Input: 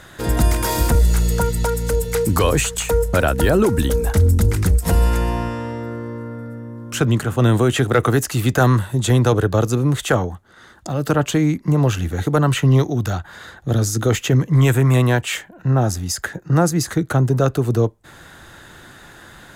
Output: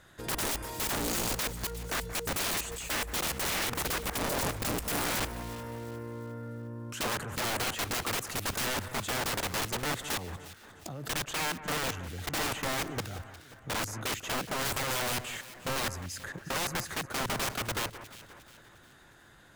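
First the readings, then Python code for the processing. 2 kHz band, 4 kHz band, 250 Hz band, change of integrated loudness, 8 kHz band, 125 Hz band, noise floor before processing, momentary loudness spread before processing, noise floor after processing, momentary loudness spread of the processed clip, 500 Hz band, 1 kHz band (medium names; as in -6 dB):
-7.5 dB, -4.5 dB, -19.0 dB, -14.0 dB, -7.0 dB, -24.0 dB, -44 dBFS, 11 LU, -56 dBFS, 11 LU, -17.5 dB, -10.0 dB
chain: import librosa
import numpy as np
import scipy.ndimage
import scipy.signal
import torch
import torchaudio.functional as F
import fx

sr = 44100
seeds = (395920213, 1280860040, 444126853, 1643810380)

y = fx.level_steps(x, sr, step_db=18)
y = (np.mod(10.0 ** (22.5 / 20.0) * y + 1.0, 2.0) - 1.0) / 10.0 ** (22.5 / 20.0)
y = fx.echo_alternate(y, sr, ms=178, hz=2100.0, feedback_pct=66, wet_db=-12.0)
y = y * librosa.db_to_amplitude(-4.0)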